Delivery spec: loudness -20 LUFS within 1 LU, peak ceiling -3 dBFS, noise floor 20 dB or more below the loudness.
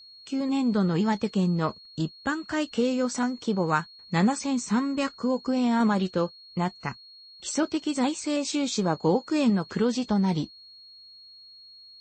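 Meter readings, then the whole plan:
steady tone 4.3 kHz; tone level -47 dBFS; loudness -26.5 LUFS; peak level -11.0 dBFS; loudness target -20.0 LUFS
-> band-stop 4.3 kHz, Q 30; trim +6.5 dB

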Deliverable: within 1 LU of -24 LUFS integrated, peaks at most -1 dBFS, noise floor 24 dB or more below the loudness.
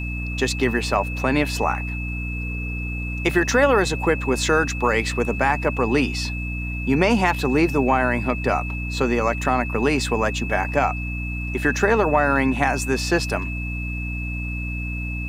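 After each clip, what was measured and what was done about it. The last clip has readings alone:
hum 60 Hz; highest harmonic 300 Hz; hum level -26 dBFS; steady tone 2.6 kHz; tone level -31 dBFS; loudness -22.0 LUFS; peak level -3.5 dBFS; loudness target -24.0 LUFS
-> de-hum 60 Hz, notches 5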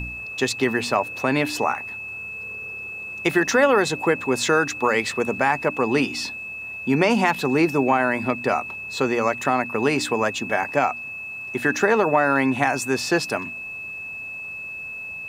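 hum not found; steady tone 2.6 kHz; tone level -31 dBFS
-> band-stop 2.6 kHz, Q 30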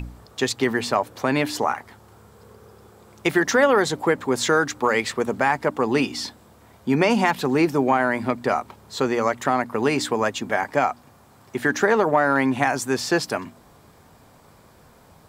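steady tone not found; loudness -22.0 LUFS; peak level -3.5 dBFS; loudness target -24.0 LUFS
-> trim -2 dB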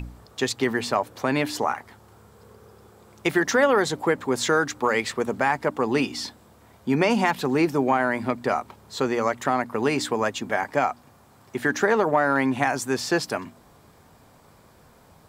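loudness -24.0 LUFS; peak level -5.5 dBFS; noise floor -54 dBFS

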